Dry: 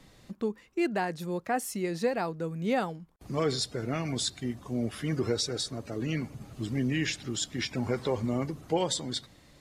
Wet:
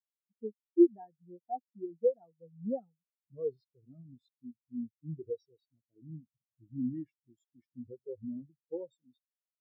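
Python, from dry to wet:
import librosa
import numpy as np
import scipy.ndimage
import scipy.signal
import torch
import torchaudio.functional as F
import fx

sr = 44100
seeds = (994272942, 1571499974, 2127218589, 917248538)

y = 10.0 ** (-18.0 / 20.0) * np.tanh(x / 10.0 ** (-18.0 / 20.0))
y = fx.spectral_expand(y, sr, expansion=4.0)
y = y * 10.0 ** (7.0 / 20.0)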